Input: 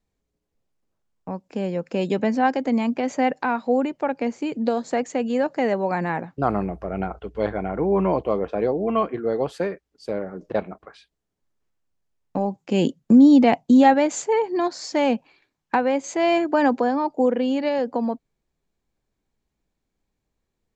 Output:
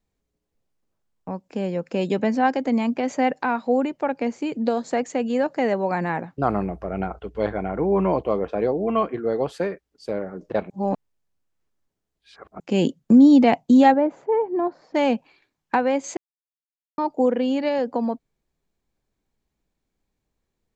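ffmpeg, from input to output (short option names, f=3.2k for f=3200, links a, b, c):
-filter_complex "[0:a]asplit=3[a][b][c];[a]afade=t=out:st=13.91:d=0.02[d];[b]lowpass=1k,afade=t=in:st=13.91:d=0.02,afade=t=out:st=14.94:d=0.02[e];[c]afade=t=in:st=14.94:d=0.02[f];[d][e][f]amix=inputs=3:normalize=0,asplit=5[g][h][i][j][k];[g]atrim=end=10.702[l];[h]atrim=start=10.698:end=12.602,asetpts=PTS-STARTPTS,areverse[m];[i]atrim=start=12.598:end=16.17,asetpts=PTS-STARTPTS,afade=t=out:st=3.568:d=0.004:c=hsin[n];[j]atrim=start=16.17:end=16.98,asetpts=PTS-STARTPTS,volume=0[o];[k]atrim=start=16.98,asetpts=PTS-STARTPTS,afade=t=in:d=0.004:c=hsin[p];[l][m]acrossfade=d=0.004:c1=hsin:c2=hsin[q];[n][o][p]concat=n=3:v=0:a=1[r];[q][r]acrossfade=d=0.004:c1=hsin:c2=hsin"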